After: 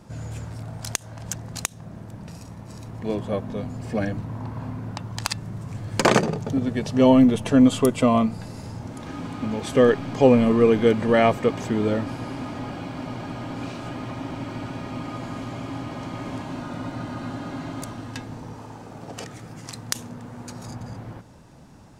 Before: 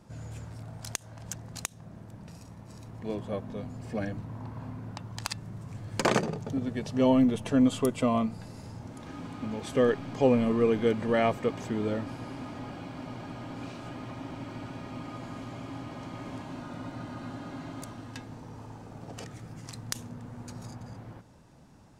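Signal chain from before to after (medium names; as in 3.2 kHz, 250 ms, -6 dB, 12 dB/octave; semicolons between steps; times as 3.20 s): 18.53–20.68 s: bass shelf 140 Hz -8.5 dB; trim +7.5 dB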